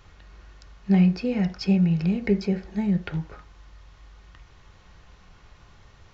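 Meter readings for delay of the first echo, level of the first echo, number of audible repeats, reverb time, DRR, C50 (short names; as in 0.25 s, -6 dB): none, none, none, 0.45 s, 4.5 dB, 15.0 dB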